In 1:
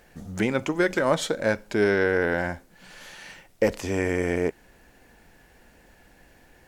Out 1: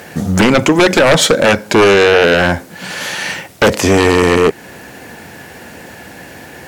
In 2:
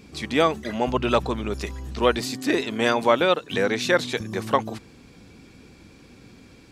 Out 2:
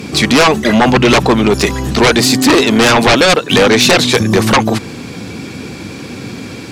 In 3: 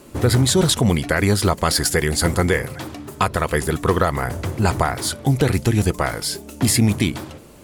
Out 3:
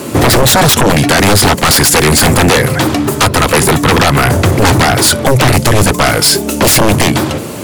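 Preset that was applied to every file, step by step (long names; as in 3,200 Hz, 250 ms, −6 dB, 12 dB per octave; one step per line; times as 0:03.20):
high-pass filter 87 Hz 24 dB per octave
in parallel at 0 dB: downward compressor, threshold −30 dBFS
on the sum: sine wavefolder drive 17 dB, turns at 0 dBFS
level −4 dB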